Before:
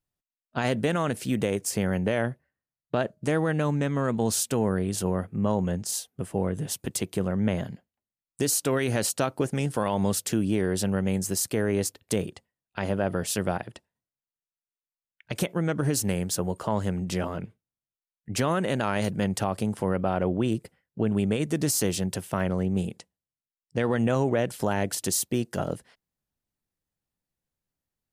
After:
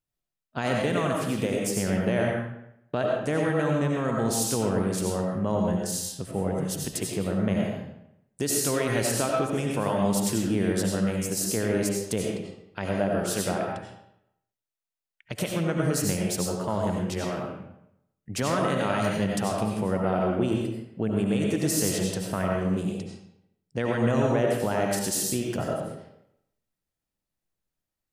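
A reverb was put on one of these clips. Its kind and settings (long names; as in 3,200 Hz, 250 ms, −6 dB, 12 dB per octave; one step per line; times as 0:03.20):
comb and all-pass reverb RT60 0.79 s, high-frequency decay 0.8×, pre-delay 50 ms, DRR −1 dB
level −2.5 dB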